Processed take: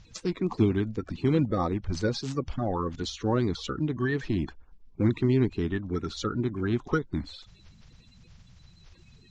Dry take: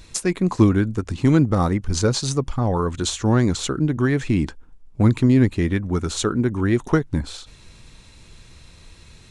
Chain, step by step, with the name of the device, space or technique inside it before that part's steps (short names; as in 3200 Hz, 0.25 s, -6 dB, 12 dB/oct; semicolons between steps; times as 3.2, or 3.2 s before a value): clip after many re-uploads (LPF 5400 Hz 24 dB/oct; bin magnitudes rounded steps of 30 dB); gain -7.5 dB